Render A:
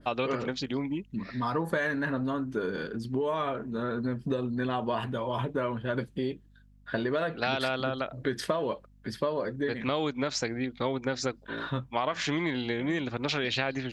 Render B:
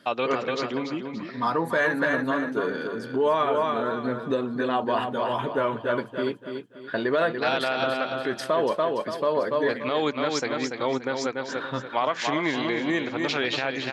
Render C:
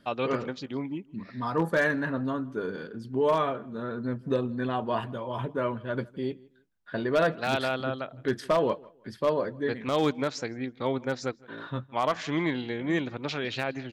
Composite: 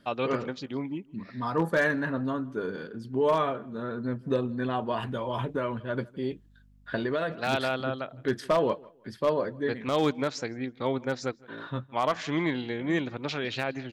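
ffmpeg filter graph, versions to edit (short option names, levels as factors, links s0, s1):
-filter_complex "[0:a]asplit=2[s0][s1];[2:a]asplit=3[s2][s3][s4];[s2]atrim=end=4.922[s5];[s0]atrim=start=4.918:end=5.802[s6];[s3]atrim=start=5.798:end=6.312[s7];[s1]atrim=start=6.308:end=7.312[s8];[s4]atrim=start=7.308[s9];[s5][s6]acrossfade=d=0.004:c1=hsin:c2=hsin[s10];[s10][s7]acrossfade=d=0.004:c1=hsin:c2=hsin[s11];[s11][s8]acrossfade=d=0.004:c1=hsin:c2=hsin[s12];[s12][s9]acrossfade=d=0.004:c1=hsin:c2=hsin"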